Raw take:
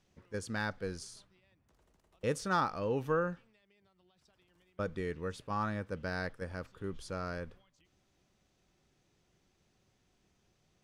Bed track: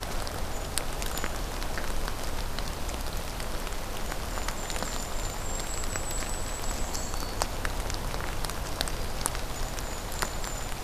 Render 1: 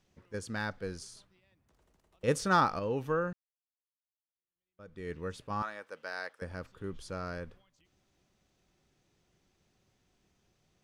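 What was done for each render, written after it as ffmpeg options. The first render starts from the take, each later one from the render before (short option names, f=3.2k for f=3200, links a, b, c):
-filter_complex "[0:a]asettb=1/sr,asplit=3[a][b][c];[a]atrim=end=5.624[d];[b]atrim=start=5.62:end=6.42,asetpts=PTS-STARTPTS,afade=t=in:d=0.004:c=qsin,afade=t=out:st=0.796:d=0.004:c=qsin,highpass=610[e];[c]atrim=start=6.416[f];[d][e]acrossfade=d=0.004:c1=hsin:c2=qsin[g];[g][f]acrossfade=d=0.004:c1=qsin:c2=hsin,asplit=4[h][i][j][k];[h]atrim=end=2.282[l];[i]atrim=start=2.278:end=2.792,asetpts=PTS-STARTPTS,volume=5dB[m];[j]atrim=start=2.788:end=3.33,asetpts=PTS-STARTPTS,afade=t=out:st=0.538:d=0.004:c=hsin[n];[k]atrim=start=3.33,asetpts=PTS-STARTPTS,afade=t=in:d=1.79:c=exp[o];[l][m]acrossfade=d=0.004:c1=hsin:c2=hsin[p];[n][o]concat=n=2:v=0:a=1[q];[p][q]acrossfade=d=0.004:c1=hsin:c2=hsin"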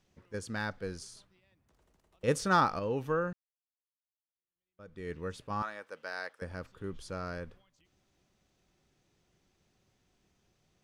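-af anull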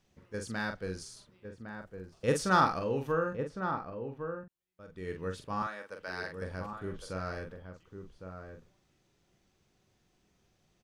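-filter_complex "[0:a]asplit=2[a][b];[b]adelay=43,volume=-6dB[c];[a][c]amix=inputs=2:normalize=0,asplit=2[d][e];[e]adelay=1108,volume=-7dB,highshelf=f=4k:g=-24.9[f];[d][f]amix=inputs=2:normalize=0"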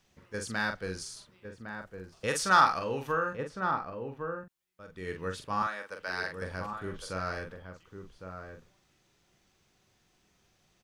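-filter_complex "[0:a]acrossover=split=770[a][b];[a]alimiter=level_in=2.5dB:limit=-24dB:level=0:latency=1:release=455,volume=-2.5dB[c];[b]acontrast=37[d];[c][d]amix=inputs=2:normalize=0"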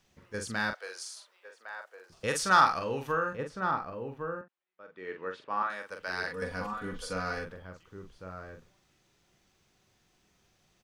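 -filter_complex "[0:a]asettb=1/sr,asplit=3[a][b][c];[a]atrim=end=0.734[d];[b]atrim=start=0.73:end=2.1,asetpts=PTS-STARTPTS,afade=t=in:d=0.004:c=qsin,afade=t=out:st=1.366:d=0.004:c=qsin,highpass=f=550:w=0.5412,highpass=f=550:w=1.3066[e];[c]atrim=start=2.096[f];[d][e]acrossfade=d=0.004:c1=hsin:c2=qsin[g];[g][f]acrossfade=d=0.004:c1=qsin:c2=hsin,asettb=1/sr,asplit=3[h][i][j];[h]atrim=end=4.414[k];[i]atrim=start=4.41:end=5.7,asetpts=PTS-STARTPTS,afade=t=in:d=0.004:c=qsin,afade=t=out:st=1.286:d=0.004:c=qsin,highpass=340,lowpass=2.5k[l];[j]atrim=start=5.696[m];[k][l]acrossfade=d=0.004:c1=hsin:c2=qsin[n];[n][m]acrossfade=d=0.004:c1=qsin:c2=hsin,asettb=1/sr,asplit=3[o][p][q];[o]atrim=end=6.274[r];[p]atrim=start=6.27:end=7.45,asetpts=PTS-STARTPTS,afade=t=in:d=0.004:c=qsin,afade=t=out:st=1.176:d=0.004:c=qsin,aecho=1:1:4.1:0.74,atrim=end_sample=52038[s];[q]atrim=start=7.446[t];[r][s]acrossfade=d=0.004:c1=hsin:c2=qsin[u];[u][t]acrossfade=d=0.004:c1=qsin:c2=hsin"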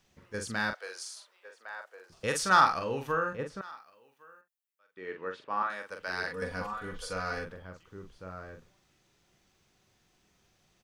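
-filter_complex "[0:a]asettb=1/sr,asplit=3[a][b][c];[a]atrim=end=3.614[d];[b]atrim=start=3.61:end=4.97,asetpts=PTS-STARTPTS,afade=t=in:d=0.004:c=qsin,afade=t=out:st=1.356:d=0.004:c=qsin,aderivative[e];[c]atrim=start=4.966[f];[d][e]acrossfade=d=0.004:c1=hsin:c2=qsin[g];[g][f]acrossfade=d=0.004:c1=qsin:c2=hsin,asettb=1/sr,asplit=3[h][i][j];[h]atrim=end=6.624[k];[i]atrim=start=6.62:end=7.32,asetpts=PTS-STARTPTS,afade=t=in:d=0.004:c=qsin,afade=t=out:st=0.696:d=0.004:c=qsin,equalizer=f=240:t=o:w=0.77:g=-8.5[l];[j]atrim=start=7.316[m];[k][l]acrossfade=d=0.004:c1=hsin:c2=qsin[n];[n][m]acrossfade=d=0.004:c1=qsin:c2=hsin"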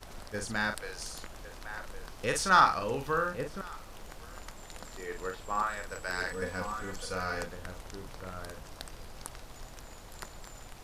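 -filter_complex "[1:a]volume=-14dB[a];[0:a][a]amix=inputs=2:normalize=0"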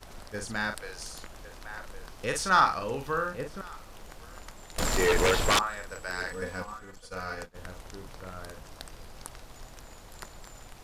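-filter_complex "[0:a]asettb=1/sr,asplit=3[a][b][c];[a]atrim=end=4.784[d];[b]atrim=start=4.78:end=5.59,asetpts=PTS-STARTPTS,afade=t=in:d=0.004:c=qsin,afade=t=out:st=0.806:d=0.004:c=qsin,aeval=exprs='0.119*sin(PI/2*6.31*val(0)/0.119)':c=same[e];[c]atrim=start=5.586[f];[d][e]acrossfade=d=0.004:c1=hsin:c2=qsin[g];[g][f]acrossfade=d=0.004:c1=qsin:c2=hsin,asplit=3[h][i][j];[h]afade=t=out:st=6.61:d=0.02[k];[i]agate=range=-33dB:threshold=-32dB:ratio=3:release=100:detection=peak,afade=t=in:st=6.61:d=0.02,afade=t=out:st=7.54:d=0.02[l];[j]afade=t=in:st=7.54:d=0.02[m];[k][l][m]amix=inputs=3:normalize=0"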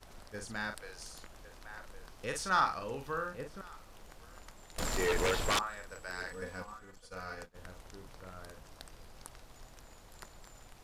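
-af "volume=-7dB"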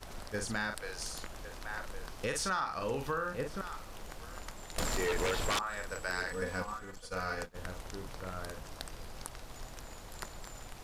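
-filter_complex "[0:a]asplit=2[a][b];[b]alimiter=level_in=4.5dB:limit=-24dB:level=0:latency=1:release=272,volume=-4.5dB,volume=3dB[c];[a][c]amix=inputs=2:normalize=0,acompressor=threshold=-30dB:ratio=6"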